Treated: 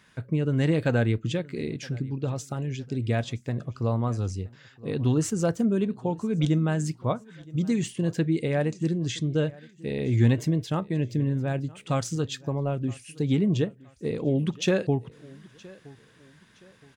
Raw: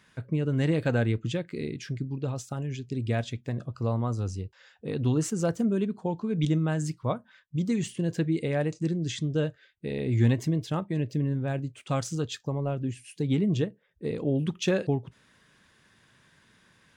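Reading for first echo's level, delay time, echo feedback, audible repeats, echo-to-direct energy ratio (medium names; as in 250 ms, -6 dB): -22.5 dB, 969 ms, 36%, 2, -22.0 dB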